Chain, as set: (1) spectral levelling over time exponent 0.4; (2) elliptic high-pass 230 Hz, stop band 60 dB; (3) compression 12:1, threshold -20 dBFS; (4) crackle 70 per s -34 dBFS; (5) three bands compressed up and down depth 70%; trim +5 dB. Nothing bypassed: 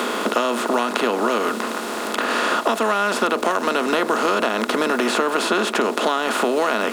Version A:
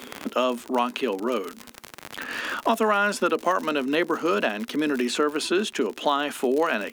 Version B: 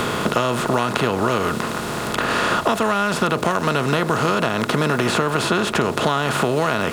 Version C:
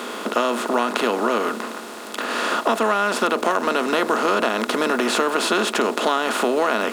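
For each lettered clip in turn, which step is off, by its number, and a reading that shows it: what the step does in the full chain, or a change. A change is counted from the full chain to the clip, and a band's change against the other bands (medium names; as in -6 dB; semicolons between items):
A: 1, 250 Hz band +3.0 dB; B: 2, 125 Hz band +17.5 dB; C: 5, momentary loudness spread change +3 LU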